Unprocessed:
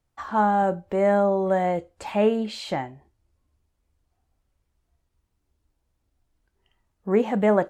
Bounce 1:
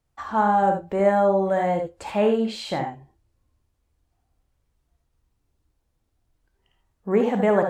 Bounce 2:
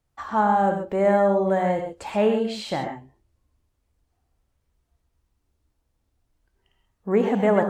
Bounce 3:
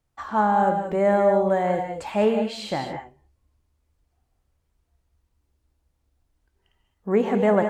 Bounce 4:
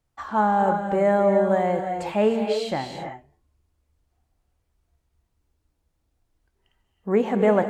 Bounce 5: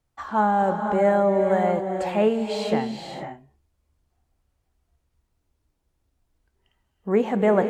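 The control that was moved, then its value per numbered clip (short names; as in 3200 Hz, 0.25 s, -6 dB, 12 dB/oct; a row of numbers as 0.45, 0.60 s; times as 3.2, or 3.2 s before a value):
non-linear reverb, gate: 0.1, 0.15, 0.23, 0.35, 0.53 s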